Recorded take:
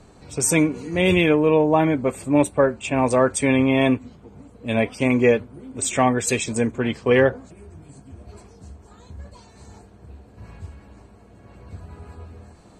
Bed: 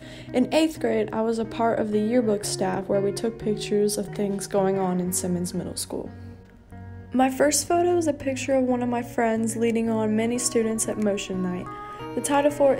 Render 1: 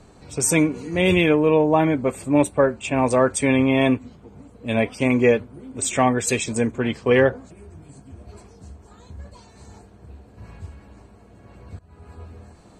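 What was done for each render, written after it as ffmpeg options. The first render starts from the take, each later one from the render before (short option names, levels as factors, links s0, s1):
-filter_complex "[0:a]asplit=2[s0][s1];[s0]atrim=end=11.79,asetpts=PTS-STARTPTS,afade=t=out:st=11.786:d=0.004:c=hsin:silence=0.105925[s2];[s1]atrim=start=11.79,asetpts=PTS-STARTPTS,afade=t=in:d=0.42:silence=0.105925[s3];[s2][s3]concat=n=2:v=0:a=1"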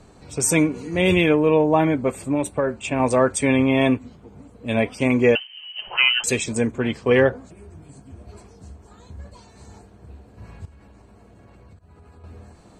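-filter_complex "[0:a]asettb=1/sr,asplit=3[s0][s1][s2];[s0]atrim=end=2.214[s3];[s1]atrim=start=2.21:end=3,asetpts=PTS-STARTPTS,afade=t=in:d=0.004:c=qsin,afade=t=out:st=0.786:d=0.004:c=qsin,acompressor=threshold=0.158:ratio=6:attack=3.2:release=140:knee=1:detection=peak[s4];[s2]atrim=start=2.996[s5];[s3][s4]acrossfade=d=0.004:c1=hsin:c2=qsin[s6];[s6][s5]acrossfade=d=0.004:c1=qsin:c2=hsin,asettb=1/sr,asplit=3[s7][s8][s9];[s7]atrim=end=5.354[s10];[s8]atrim=start=5.35:end=6.24,asetpts=PTS-STARTPTS,afade=t=in:d=0.004:c=qsin,afade=t=out:st=0.886:d=0.004:c=qsin,lowpass=f=2700:t=q:w=0.5098,lowpass=f=2700:t=q:w=0.6013,lowpass=f=2700:t=q:w=0.9,lowpass=f=2700:t=q:w=2.563,afreqshift=-3200[s11];[s9]atrim=start=6.236[s12];[s10][s11]acrossfade=d=0.004:c1=hsin:c2=qsin[s13];[s13][s12]acrossfade=d=0.004:c1=qsin:c2=hsin,asettb=1/sr,asplit=3[s14][s15][s16];[s14]atrim=end=10.654[s17];[s15]atrim=start=10.65:end=12.24,asetpts=PTS-STARTPTS,afade=t=in:d=0.004:c=qsin,afade=t=out:st=1.586:d=0.004:c=qsin,acompressor=threshold=0.00631:ratio=6:attack=3.2:release=140:knee=1:detection=peak[s18];[s16]atrim=start=12.236[s19];[s17][s18]acrossfade=d=0.004:c1=hsin:c2=qsin[s20];[s20][s19]acrossfade=d=0.004:c1=qsin:c2=hsin"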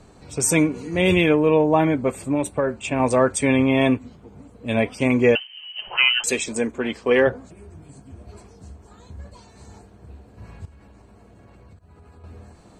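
-filter_complex "[0:a]asettb=1/sr,asplit=3[s0][s1][s2];[s0]atrim=end=6.054[s3];[s1]atrim=start=6.05:end=7.27,asetpts=PTS-STARTPTS,afade=t=in:d=0.004:c=qsin,afade=t=out:st=1.216:d=0.004:c=qsin,equalizer=f=120:w=1.5:g=-14[s4];[s2]atrim=start=7.266[s5];[s3][s4]acrossfade=d=0.004:c1=hsin:c2=qsin[s6];[s6][s5]acrossfade=d=0.004:c1=qsin:c2=hsin"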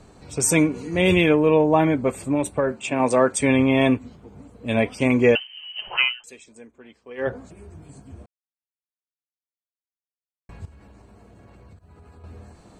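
-filter_complex "[0:a]asettb=1/sr,asplit=3[s0][s1][s2];[s0]atrim=end=2.724[s3];[s1]atrim=start=2.72:end=3.38,asetpts=PTS-STARTPTS,afade=t=in:d=0.004:c=qsin,afade=t=out:st=0.656:d=0.004:c=qsin,highpass=160[s4];[s2]atrim=start=3.376[s5];[s3][s4]acrossfade=d=0.004:c1=hsin:c2=qsin[s6];[s6][s5]acrossfade=d=0.004:c1=qsin:c2=hsin,asplit=5[s7][s8][s9][s10][s11];[s7]atrim=end=6.17,asetpts=PTS-STARTPTS,afade=t=out:st=5.97:d=0.2:silence=0.0841395[s12];[s8]atrim=start=6.17:end=7.17,asetpts=PTS-STARTPTS,volume=0.0841[s13];[s9]atrim=start=7.17:end=8.26,asetpts=PTS-STARTPTS,afade=t=in:d=0.2:silence=0.0841395,afade=t=out:st=1.086:d=0.004:c=hsin[s14];[s10]atrim=start=8.26:end=10.49,asetpts=PTS-STARTPTS,volume=0[s15];[s11]atrim=start=10.49,asetpts=PTS-STARTPTS,afade=t=in:d=0.004:c=hsin[s16];[s12][s13][s14][s15][s16]concat=n=5:v=0:a=1"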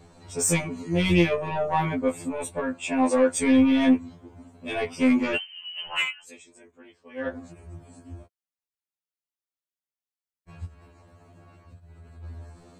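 -af "asoftclip=type=tanh:threshold=0.266,afftfilt=real='re*2*eq(mod(b,4),0)':imag='im*2*eq(mod(b,4),0)':win_size=2048:overlap=0.75"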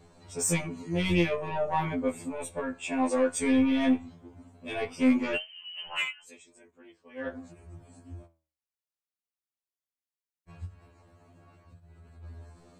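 -af "flanger=delay=4.8:depth=9.6:regen=80:speed=0.16:shape=sinusoidal"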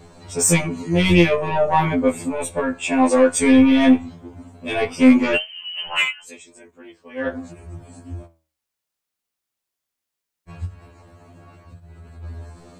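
-af "volume=3.55"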